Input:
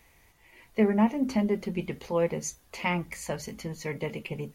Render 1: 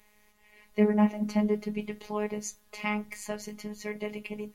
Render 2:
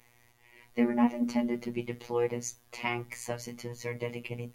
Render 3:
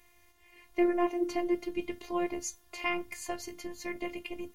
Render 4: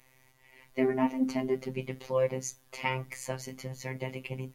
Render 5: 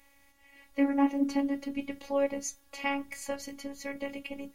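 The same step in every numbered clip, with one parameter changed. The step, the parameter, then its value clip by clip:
phases set to zero, frequency: 210, 120, 350, 130, 280 Hertz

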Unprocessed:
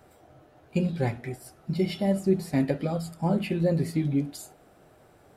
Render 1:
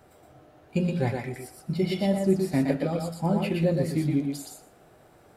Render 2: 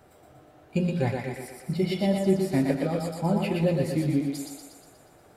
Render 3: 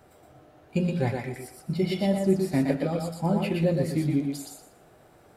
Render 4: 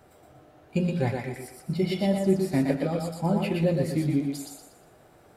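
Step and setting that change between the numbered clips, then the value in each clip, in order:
feedback echo with a high-pass in the loop, feedback: 15, 59, 26, 38%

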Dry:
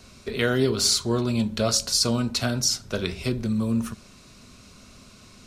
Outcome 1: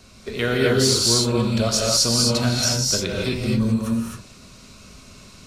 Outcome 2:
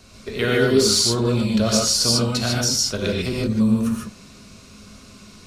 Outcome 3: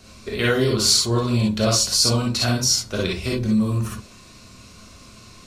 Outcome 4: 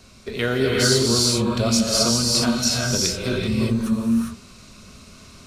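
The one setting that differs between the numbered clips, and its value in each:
reverb whose tail is shaped and stops, gate: 290, 170, 80, 430 milliseconds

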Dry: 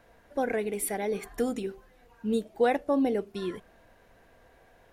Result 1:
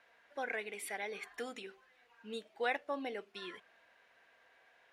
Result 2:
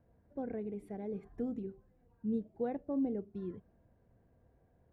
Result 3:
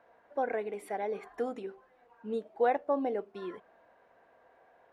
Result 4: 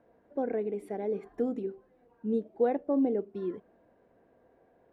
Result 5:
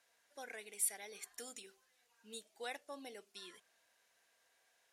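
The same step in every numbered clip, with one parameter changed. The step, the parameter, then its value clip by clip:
resonant band-pass, frequency: 2,400, 110, 850, 330, 7,300 Hertz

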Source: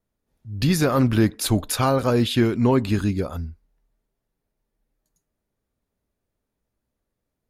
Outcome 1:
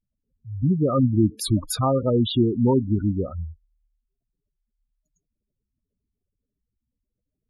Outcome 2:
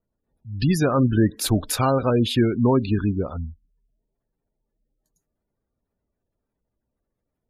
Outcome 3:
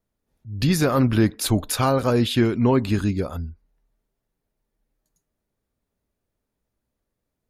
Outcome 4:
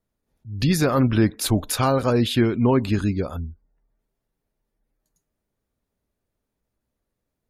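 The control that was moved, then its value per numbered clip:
gate on every frequency bin, under each frame's peak: −10, −25, −50, −40 decibels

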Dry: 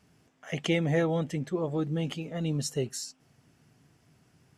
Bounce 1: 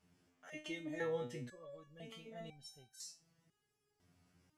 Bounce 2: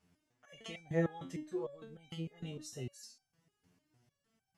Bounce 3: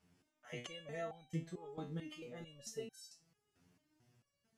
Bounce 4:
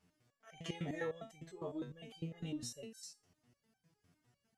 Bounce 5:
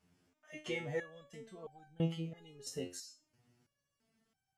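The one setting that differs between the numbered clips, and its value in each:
step-sequenced resonator, speed: 2, 6.6, 4.5, 9.9, 3 Hertz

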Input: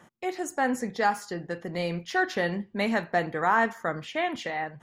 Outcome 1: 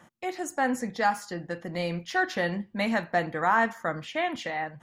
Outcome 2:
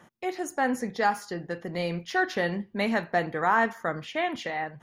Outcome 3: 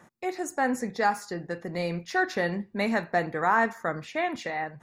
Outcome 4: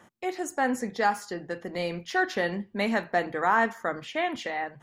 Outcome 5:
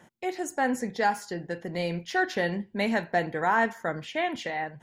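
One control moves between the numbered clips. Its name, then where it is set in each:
notch filter, centre frequency: 410, 7,700, 3,100, 160, 1,200 Hertz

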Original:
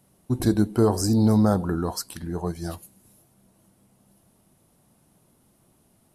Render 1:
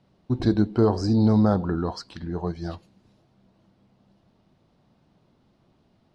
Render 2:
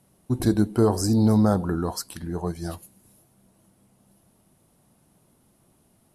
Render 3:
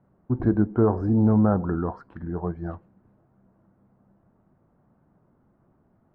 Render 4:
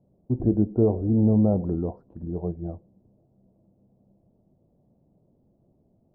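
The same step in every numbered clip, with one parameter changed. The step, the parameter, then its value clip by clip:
Chebyshev low-pass filter, frequency: 4,500, 12,000, 1,500, 610 Hertz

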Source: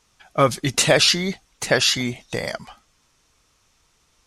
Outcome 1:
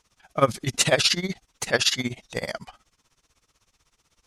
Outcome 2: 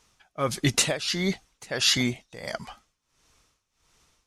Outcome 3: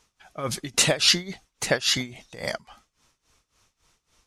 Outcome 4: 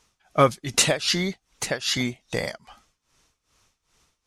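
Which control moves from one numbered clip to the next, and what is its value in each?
amplitude tremolo, speed: 16, 1.5, 3.6, 2.5 Hertz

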